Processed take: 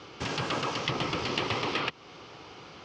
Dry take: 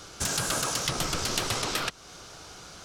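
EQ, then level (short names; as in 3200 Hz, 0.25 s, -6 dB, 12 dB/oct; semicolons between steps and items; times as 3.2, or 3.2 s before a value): speaker cabinet 130–3800 Hz, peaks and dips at 190 Hz -5 dB, 650 Hz -7 dB, 1500 Hz -10 dB, 3800 Hz -7 dB; +4.0 dB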